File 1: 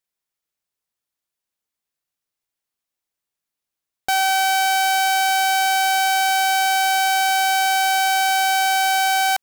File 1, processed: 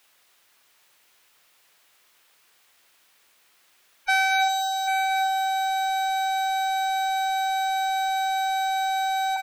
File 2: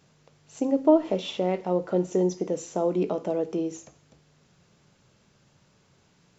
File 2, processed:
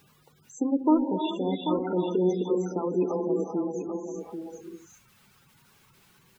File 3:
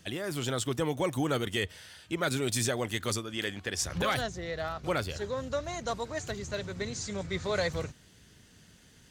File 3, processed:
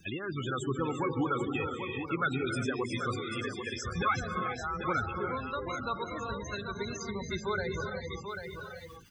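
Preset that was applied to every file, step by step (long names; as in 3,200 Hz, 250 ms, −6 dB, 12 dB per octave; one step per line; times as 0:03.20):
reverb reduction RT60 2 s
low-shelf EQ 80 Hz +5 dB
reverb whose tail is shaped and stops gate 420 ms rising, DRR 2.5 dB
spectral peaks only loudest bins 32
comb filter 0.8 ms, depth 78%
background noise white −65 dBFS
gate on every frequency bin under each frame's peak −30 dB strong
bass and treble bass −7 dB, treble −9 dB
single-tap delay 790 ms −8.5 dB
one half of a high-frequency compander encoder only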